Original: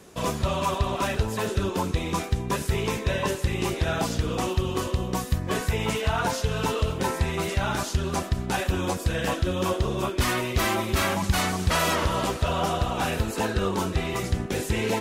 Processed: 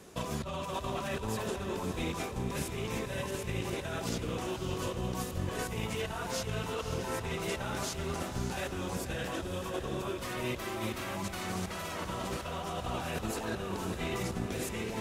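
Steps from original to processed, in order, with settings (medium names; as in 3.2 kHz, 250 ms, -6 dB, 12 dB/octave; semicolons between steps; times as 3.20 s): compressor with a negative ratio -30 dBFS, ratio -1; echo that smears into a reverb 569 ms, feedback 48%, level -8 dB; trim -7 dB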